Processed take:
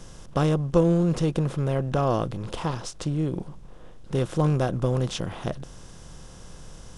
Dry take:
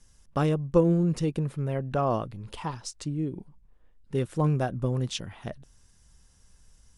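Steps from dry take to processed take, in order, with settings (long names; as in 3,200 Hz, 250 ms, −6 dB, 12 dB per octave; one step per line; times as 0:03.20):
compressor on every frequency bin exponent 0.6
low-shelf EQ 120 Hz +5 dB
level −1 dB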